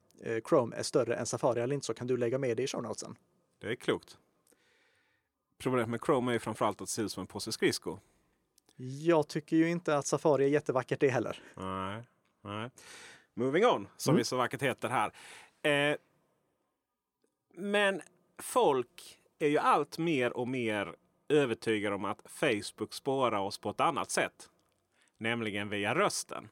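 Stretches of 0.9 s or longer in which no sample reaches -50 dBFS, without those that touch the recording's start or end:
4.5–5.6
15.97–17.55

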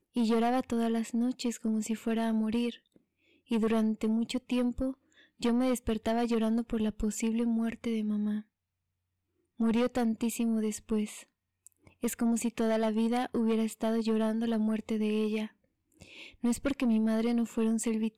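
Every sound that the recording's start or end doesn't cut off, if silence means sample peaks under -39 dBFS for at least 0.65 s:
3.51–8.4

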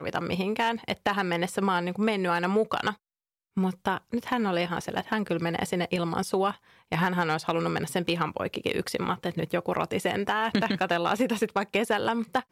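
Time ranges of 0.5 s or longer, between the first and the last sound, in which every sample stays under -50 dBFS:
2.96–3.57

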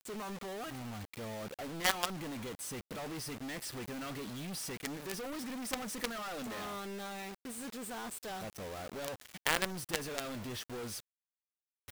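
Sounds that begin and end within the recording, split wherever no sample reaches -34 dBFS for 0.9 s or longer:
1.84–2.05
4.85–6.05
9.05–10.2

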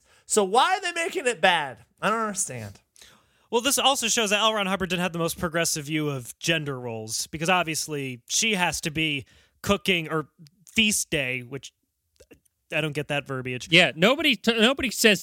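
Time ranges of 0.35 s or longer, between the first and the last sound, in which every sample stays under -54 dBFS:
11.69–12.16

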